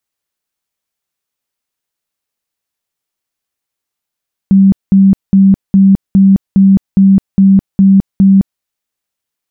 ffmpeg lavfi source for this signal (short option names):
-f lavfi -i "aevalsrc='0.75*sin(2*PI*194*mod(t,0.41))*lt(mod(t,0.41),41/194)':d=4.1:s=44100"